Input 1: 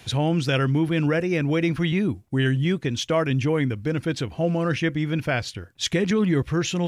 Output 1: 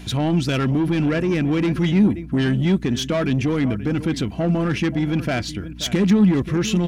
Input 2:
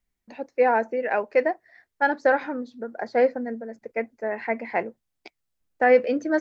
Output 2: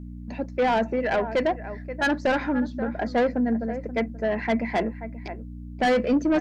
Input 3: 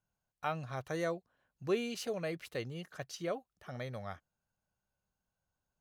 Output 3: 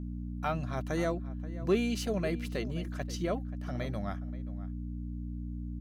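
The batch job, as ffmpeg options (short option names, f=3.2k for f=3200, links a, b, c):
-filter_complex "[0:a]aeval=exprs='val(0)+0.00794*(sin(2*PI*60*n/s)+sin(2*PI*2*60*n/s)/2+sin(2*PI*3*60*n/s)/3+sin(2*PI*4*60*n/s)/4+sin(2*PI*5*60*n/s)/5)':c=same,aecho=1:1:3:0.3,asplit=2[a][b];[b]adelay=530.6,volume=-16dB,highshelf=f=4k:g=-11.9[c];[a][c]amix=inputs=2:normalize=0,asoftclip=type=tanh:threshold=-21dB,equalizer=f=200:t=o:w=0.62:g=11.5,volume=3dB"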